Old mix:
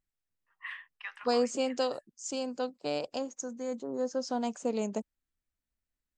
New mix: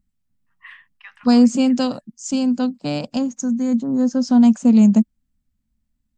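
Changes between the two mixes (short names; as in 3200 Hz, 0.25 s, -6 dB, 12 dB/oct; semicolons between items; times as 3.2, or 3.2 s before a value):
second voice +8.5 dB; master: add resonant low shelf 300 Hz +9.5 dB, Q 3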